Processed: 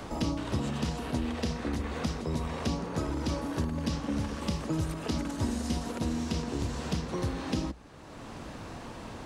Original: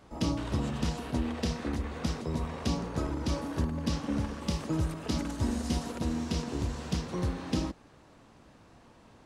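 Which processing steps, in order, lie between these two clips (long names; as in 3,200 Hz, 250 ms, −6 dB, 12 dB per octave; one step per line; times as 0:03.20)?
mains-hum notches 60/120/180 Hz
multiband upward and downward compressor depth 70%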